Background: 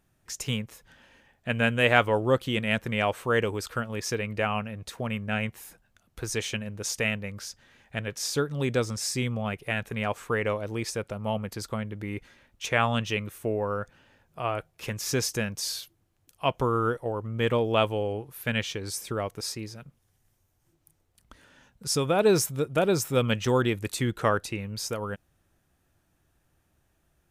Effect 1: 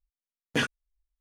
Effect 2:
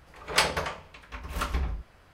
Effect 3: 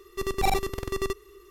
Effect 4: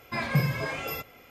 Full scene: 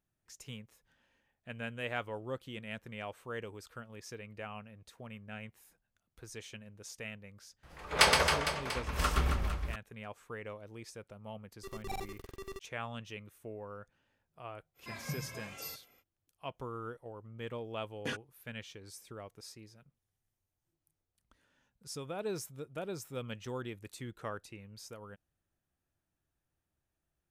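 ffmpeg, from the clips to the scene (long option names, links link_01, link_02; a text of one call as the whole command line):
ffmpeg -i bed.wav -i cue0.wav -i cue1.wav -i cue2.wav -i cue3.wav -filter_complex "[0:a]volume=-16.5dB[link_01];[2:a]aecho=1:1:120|270|457.5|691.9|984.8:0.631|0.398|0.251|0.158|0.1[link_02];[3:a]aeval=exprs='val(0)*gte(abs(val(0)),0.0126)':channel_layout=same[link_03];[4:a]highshelf=frequency=5200:gain=10.5[link_04];[link_02]atrim=end=2.13,asetpts=PTS-STARTPTS,volume=-1dB,afade=type=in:duration=0.004:curve=hsin,afade=type=out:start_time=2.126:duration=0.004:curve=hsin,adelay=7630[link_05];[link_03]atrim=end=1.5,asetpts=PTS-STARTPTS,volume=-16dB,afade=type=in:duration=0.004:curve=hsin,afade=type=out:start_time=1.496:duration=0.004:curve=hsin,adelay=505386S[link_06];[link_04]atrim=end=1.3,asetpts=PTS-STARTPTS,volume=-16dB,afade=type=in:duration=0.05,afade=type=out:start_time=1.25:duration=0.05,adelay=14740[link_07];[1:a]atrim=end=1.2,asetpts=PTS-STARTPTS,volume=-11.5dB,afade=type=in:duration=0.004:curve=hsin,afade=type=out:start_time=1.196:duration=0.004:curve=hsin,adelay=17500[link_08];[link_01][link_05][link_06][link_07][link_08]amix=inputs=5:normalize=0" out.wav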